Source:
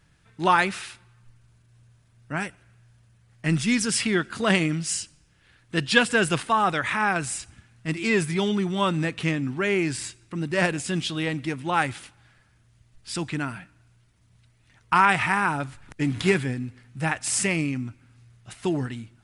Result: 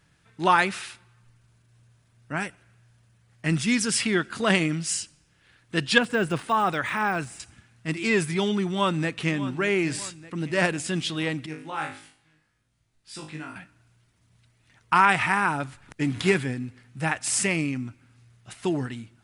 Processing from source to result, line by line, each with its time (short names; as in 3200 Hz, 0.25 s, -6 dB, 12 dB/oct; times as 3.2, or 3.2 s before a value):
5.98–7.4 de-esser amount 95%
8.63–9.39 echo throw 0.6 s, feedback 55%, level -14.5 dB
11.46–13.56 resonator 52 Hz, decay 0.39 s, mix 100%
whole clip: low shelf 71 Hz -9.5 dB